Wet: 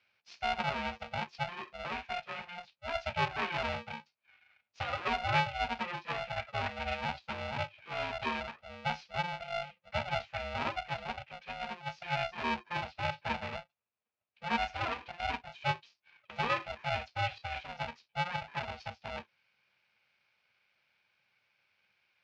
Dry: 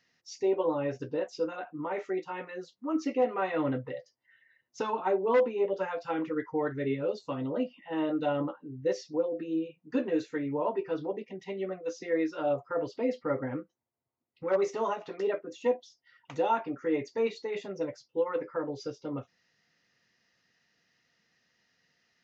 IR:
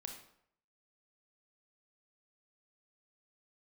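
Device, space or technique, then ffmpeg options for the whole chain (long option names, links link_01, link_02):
ring modulator pedal into a guitar cabinet: -filter_complex "[0:a]asettb=1/sr,asplit=3[link_01][link_02][link_03];[link_01]atrim=end=8.034[link_04];[link_02]atrim=start=8.03:end=8.6,asetpts=PTS-STARTPTS,afade=type=in:duration=0.004:curve=qsin,afade=type=out:start_time=0.566:duration=0.004:curve=qsin,aemphasis=mode=production:type=bsi[link_05];[link_03]atrim=start=8.596[link_06];[link_04][link_05]acrossfade=duration=0.004:curve1=hsin:curve2=qsin[link_07];[link_07][link_06]acrossfade=duration=0.004:curve1=qsin:curve2=hsin,aeval=exprs='val(0)*sgn(sin(2*PI*350*n/s))':channel_layout=same,highpass=92,equalizer=frequency=170:width_type=q:width=4:gain=-8,equalizer=frequency=290:width_type=q:width=4:gain=-9,equalizer=frequency=500:width_type=q:width=4:gain=-4,equalizer=frequency=2500:width_type=q:width=4:gain=9,lowpass=frequency=4500:width=0.5412,lowpass=frequency=4500:width=1.3066,volume=-4dB"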